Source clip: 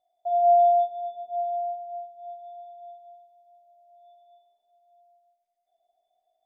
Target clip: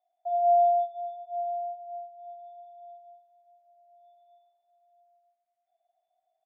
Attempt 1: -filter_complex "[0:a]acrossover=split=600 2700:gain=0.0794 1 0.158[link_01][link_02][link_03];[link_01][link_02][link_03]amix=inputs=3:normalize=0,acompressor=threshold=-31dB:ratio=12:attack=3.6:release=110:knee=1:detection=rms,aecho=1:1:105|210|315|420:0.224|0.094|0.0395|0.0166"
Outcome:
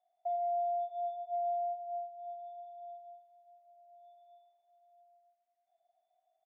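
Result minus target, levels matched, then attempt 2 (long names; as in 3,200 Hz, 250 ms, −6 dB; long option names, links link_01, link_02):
downward compressor: peak gain reduction +13 dB
-filter_complex "[0:a]acrossover=split=600 2700:gain=0.0794 1 0.158[link_01][link_02][link_03];[link_01][link_02][link_03]amix=inputs=3:normalize=0,aecho=1:1:105|210|315|420:0.224|0.094|0.0395|0.0166"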